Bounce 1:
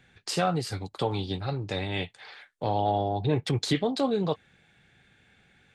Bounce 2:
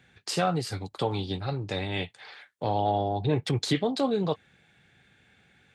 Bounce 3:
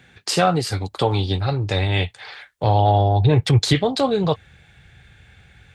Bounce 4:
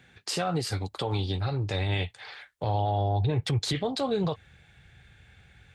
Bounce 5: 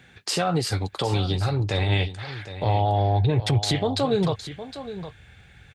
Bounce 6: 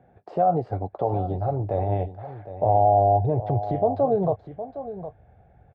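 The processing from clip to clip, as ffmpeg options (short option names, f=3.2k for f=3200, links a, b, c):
-af "highpass=54"
-af "asubboost=boost=11:cutoff=74,volume=9dB"
-af "alimiter=limit=-13dB:level=0:latency=1:release=69,volume=-6dB"
-af "aecho=1:1:762:0.237,volume=5dB"
-af "lowpass=f=680:t=q:w=4.9,volume=-4dB"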